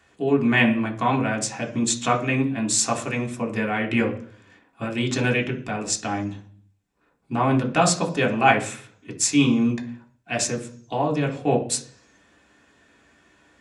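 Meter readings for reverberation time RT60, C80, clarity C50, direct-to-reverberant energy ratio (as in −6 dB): 0.50 s, 17.0 dB, 12.5 dB, 0.0 dB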